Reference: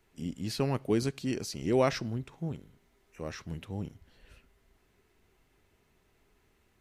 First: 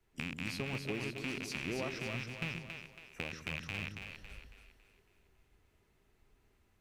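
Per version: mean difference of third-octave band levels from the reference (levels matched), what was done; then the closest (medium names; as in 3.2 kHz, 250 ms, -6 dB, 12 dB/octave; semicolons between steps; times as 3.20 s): 11.5 dB: rattle on loud lows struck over -43 dBFS, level -19 dBFS; compression 12:1, threshold -41 dBFS, peak gain reduction 21 dB; two-band feedback delay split 400 Hz, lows 131 ms, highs 277 ms, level -4.5 dB; three bands expanded up and down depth 40%; trim +4 dB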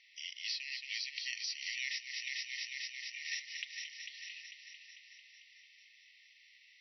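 24.0 dB: brick-wall FIR band-pass 1.8–5.9 kHz; multi-head delay 223 ms, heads first and second, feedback 63%, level -12.5 dB; compression 8:1, threshold -49 dBFS, peak gain reduction 15 dB; harmonic-percussive split harmonic +4 dB; trim +11.5 dB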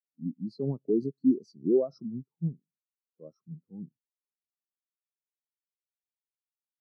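16.5 dB: high-pass 140 Hz 24 dB/octave; peak limiter -23 dBFS, peak gain reduction 10.5 dB; brick-wall FIR band-stop 1.4–3.9 kHz; spectral contrast expander 2.5:1; trim +8.5 dB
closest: first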